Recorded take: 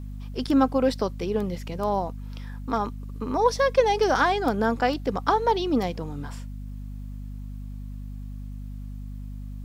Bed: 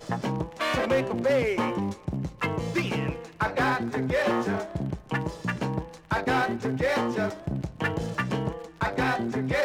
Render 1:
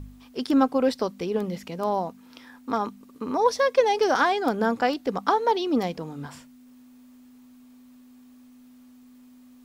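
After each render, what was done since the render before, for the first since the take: de-hum 50 Hz, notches 4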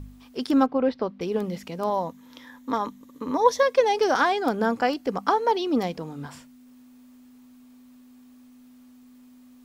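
0.66–1.21 air absorption 310 m; 1.89–3.63 ripple EQ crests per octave 1.1, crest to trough 7 dB; 4.75–5.59 notch 3700 Hz, Q 9.8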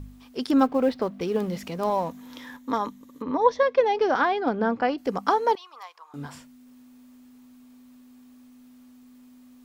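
0.59–2.57 G.711 law mismatch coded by mu; 3.22–4.98 air absorption 220 m; 5.55–6.14 ladder high-pass 1000 Hz, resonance 75%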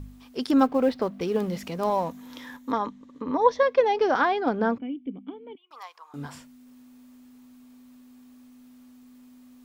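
2.72–3.25 air absorption 110 m; 4.78–5.71 vocal tract filter i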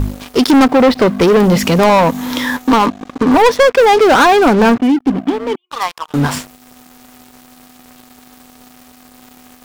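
in parallel at +0.5 dB: compressor 4:1, threshold -32 dBFS, peak gain reduction 16 dB; on the sum: sample leveller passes 5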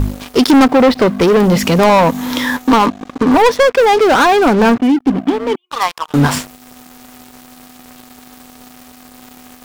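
vocal rider within 3 dB 2 s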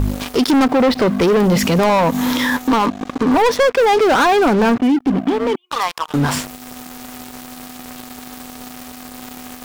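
in parallel at -2 dB: compressor, threshold -20 dBFS, peak gain reduction 12.5 dB; on the sum: limiter -10 dBFS, peak gain reduction 8 dB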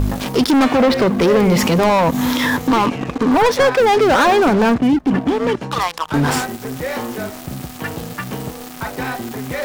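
add bed +1 dB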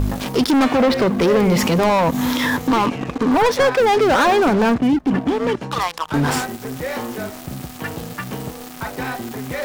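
gain -2 dB

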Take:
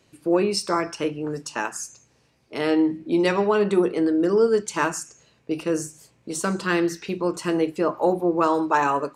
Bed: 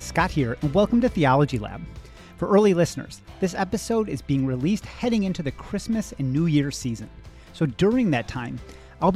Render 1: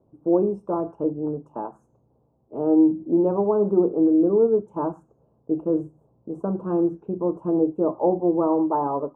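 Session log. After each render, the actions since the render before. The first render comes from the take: inverse Chebyshev low-pass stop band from 1800 Hz, stop band 40 dB; dynamic EQ 310 Hz, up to +4 dB, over -32 dBFS, Q 7.3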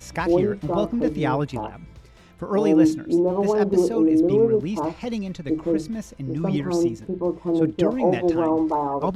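add bed -5.5 dB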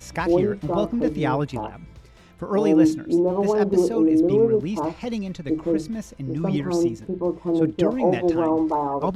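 nothing audible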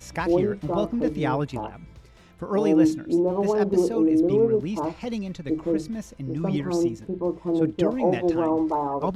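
gain -2 dB

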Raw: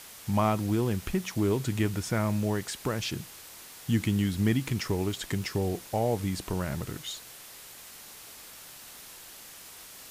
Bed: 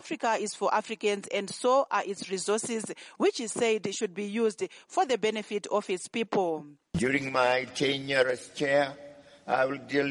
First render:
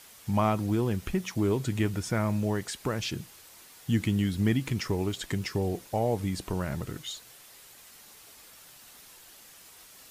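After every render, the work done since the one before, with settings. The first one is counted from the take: denoiser 6 dB, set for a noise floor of -48 dBFS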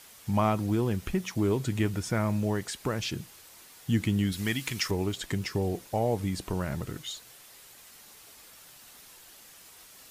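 4.32–4.91 tilt shelf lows -7.5 dB, about 940 Hz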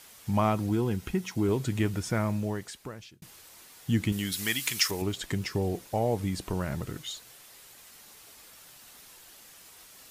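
0.69–1.49 notch comb 590 Hz; 2.17–3.22 fade out; 4.12–5.02 tilt +2.5 dB/oct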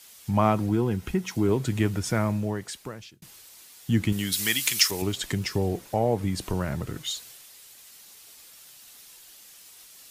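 in parallel at +0.5 dB: compressor, threshold -35 dBFS, peak gain reduction 14.5 dB; on the sum: three-band expander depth 40%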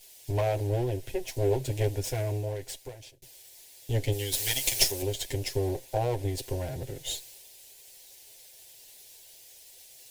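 minimum comb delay 7.7 ms; fixed phaser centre 510 Hz, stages 4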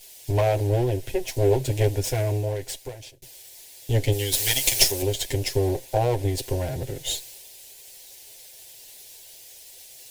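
gain +6 dB; limiter -3 dBFS, peak gain reduction 1 dB

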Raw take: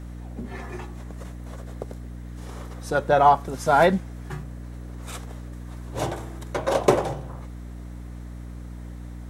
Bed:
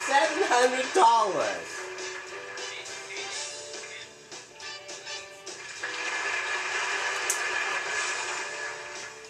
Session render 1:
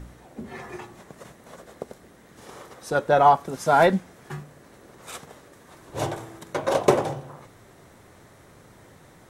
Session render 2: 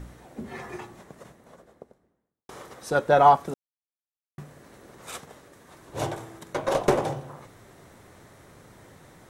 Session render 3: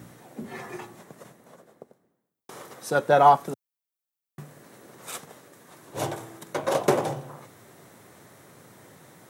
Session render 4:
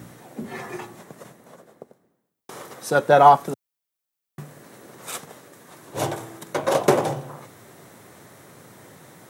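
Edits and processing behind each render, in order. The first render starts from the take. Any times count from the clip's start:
de-hum 60 Hz, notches 5
0.63–2.49 studio fade out; 3.54–4.38 mute; 5.2–7.03 tube stage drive 11 dB, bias 0.45
HPF 110 Hz 24 dB/oct; high shelf 11000 Hz +11 dB
gain +4 dB; limiter -1 dBFS, peak gain reduction 1 dB

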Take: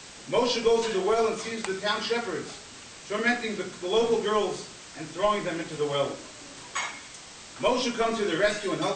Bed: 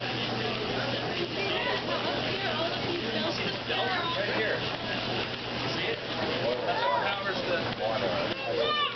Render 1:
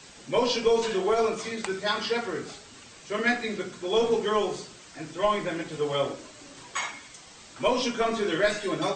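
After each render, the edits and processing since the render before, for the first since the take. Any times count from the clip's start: denoiser 6 dB, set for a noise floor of -46 dBFS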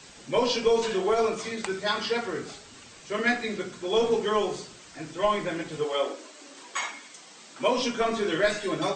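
5.83–7.76 HPF 320 Hz -> 150 Hz 24 dB/oct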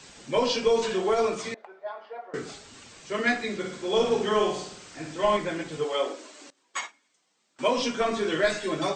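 1.54–2.34 ladder band-pass 740 Hz, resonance 60%; 3.58–5.37 flutter echo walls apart 9.1 m, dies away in 0.59 s; 6.5–7.59 upward expander 2.5:1, over -43 dBFS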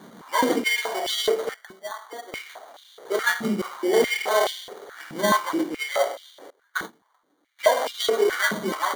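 sample-rate reducer 2600 Hz, jitter 0%; stepped high-pass 4.7 Hz 200–3400 Hz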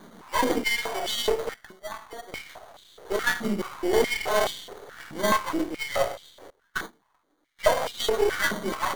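half-wave gain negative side -7 dB; wow and flutter 25 cents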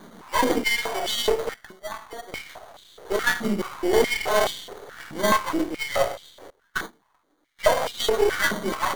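gain +2.5 dB; limiter -3 dBFS, peak gain reduction 1 dB

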